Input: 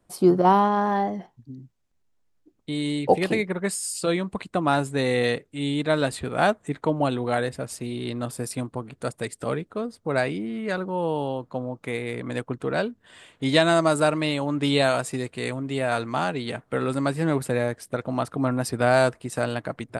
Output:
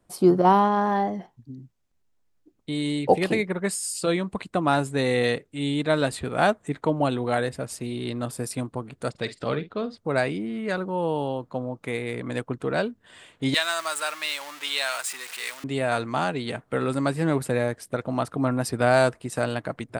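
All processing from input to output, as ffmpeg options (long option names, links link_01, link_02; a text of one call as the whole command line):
ffmpeg -i in.wav -filter_complex "[0:a]asettb=1/sr,asplit=3[link_01][link_02][link_03];[link_01]atrim=end=9.104[link_04];[link_02]atrim=start=9.1:end=9.98,asetpts=PTS-STARTPTS,afade=type=in:duration=0.004:curve=qsin,afade=type=out:start_time=0.876:duration=0.004:curve=qsin,lowpass=frequency=4100:width_type=q:width=2,asplit=2[link_05][link_06];[link_06]adelay=49,volume=-13.5dB[link_07];[link_05][link_07]amix=inputs=2:normalize=0,atrim=end_sample=38808[link_08];[link_03]atrim=start=9.976[link_09];[link_04][link_08]acrossfade=duration=0.004:curve1=hsin:curve2=qsin[link_10];[link_10][link_09]acrossfade=duration=0.004:curve1=qsin:curve2=hsin,asettb=1/sr,asplit=3[link_11][link_12][link_13];[link_11]atrim=end=13.544[link_14];[link_12]atrim=start=13.54:end=15.64,asetpts=PTS-STARTPTS,afade=type=in:duration=0.004:curve=qsin,afade=type=out:start_time=2.096:duration=0.004:curve=qsin,aeval=exprs='val(0)+0.5*0.0355*sgn(val(0))':channel_layout=same,highpass=1400[link_15];[link_13]atrim=start=15.636[link_16];[link_14][link_15]acrossfade=duration=0.004:curve1=hsin:curve2=qsin[link_17];[link_17][link_16]acrossfade=duration=0.004:curve1=qsin:curve2=hsin" out.wav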